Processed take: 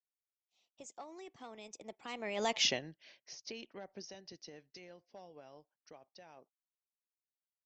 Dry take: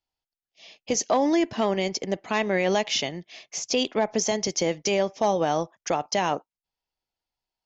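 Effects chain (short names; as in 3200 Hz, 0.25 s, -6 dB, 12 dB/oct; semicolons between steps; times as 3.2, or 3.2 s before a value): Doppler pass-by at 2.61, 38 m/s, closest 5.1 m; harmonic-percussive split harmonic -5 dB; gain -3 dB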